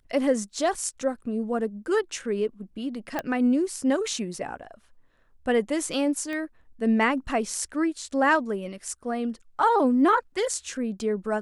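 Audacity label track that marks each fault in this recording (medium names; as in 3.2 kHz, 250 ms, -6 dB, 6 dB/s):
0.750000	0.750000	dropout 2.4 ms
3.190000	3.190000	pop -14 dBFS
6.330000	6.330000	pop -22 dBFS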